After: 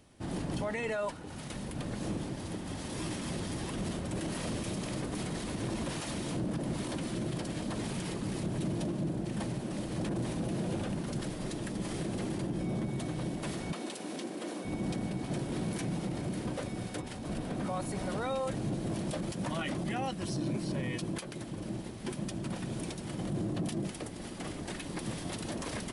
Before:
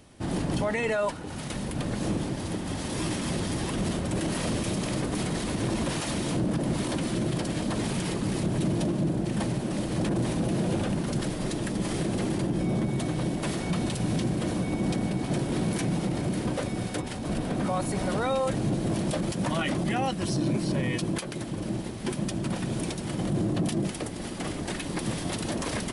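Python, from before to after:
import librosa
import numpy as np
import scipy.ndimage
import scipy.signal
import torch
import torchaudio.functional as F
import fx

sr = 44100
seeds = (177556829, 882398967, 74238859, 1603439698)

y = fx.highpass(x, sr, hz=260.0, slope=24, at=(13.72, 14.65))
y = y * 10.0 ** (-7.0 / 20.0)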